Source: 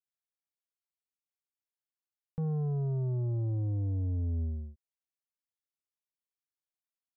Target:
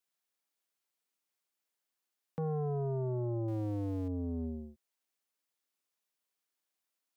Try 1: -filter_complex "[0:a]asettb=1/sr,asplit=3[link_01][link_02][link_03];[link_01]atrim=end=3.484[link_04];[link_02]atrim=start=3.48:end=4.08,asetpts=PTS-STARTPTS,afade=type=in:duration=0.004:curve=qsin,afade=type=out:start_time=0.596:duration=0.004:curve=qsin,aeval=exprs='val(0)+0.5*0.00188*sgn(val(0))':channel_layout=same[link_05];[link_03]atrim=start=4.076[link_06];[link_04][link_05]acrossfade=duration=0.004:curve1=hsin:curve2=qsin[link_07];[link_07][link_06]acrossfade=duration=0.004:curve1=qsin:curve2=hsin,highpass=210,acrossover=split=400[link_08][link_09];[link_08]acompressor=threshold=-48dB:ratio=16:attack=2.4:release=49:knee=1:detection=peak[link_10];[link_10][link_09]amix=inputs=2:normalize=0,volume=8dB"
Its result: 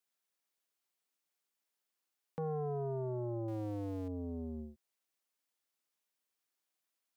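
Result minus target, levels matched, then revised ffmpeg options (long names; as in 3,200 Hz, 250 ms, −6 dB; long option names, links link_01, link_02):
downward compressor: peak gain reduction +5.5 dB
-filter_complex "[0:a]asettb=1/sr,asplit=3[link_01][link_02][link_03];[link_01]atrim=end=3.484[link_04];[link_02]atrim=start=3.48:end=4.08,asetpts=PTS-STARTPTS,afade=type=in:duration=0.004:curve=qsin,afade=type=out:start_time=0.596:duration=0.004:curve=qsin,aeval=exprs='val(0)+0.5*0.00188*sgn(val(0))':channel_layout=same[link_05];[link_03]atrim=start=4.076[link_06];[link_04][link_05]acrossfade=duration=0.004:curve1=hsin:curve2=qsin[link_07];[link_07][link_06]acrossfade=duration=0.004:curve1=qsin:curve2=hsin,highpass=210,acrossover=split=400[link_08][link_09];[link_08]acompressor=threshold=-42dB:ratio=16:attack=2.4:release=49:knee=1:detection=peak[link_10];[link_10][link_09]amix=inputs=2:normalize=0,volume=8dB"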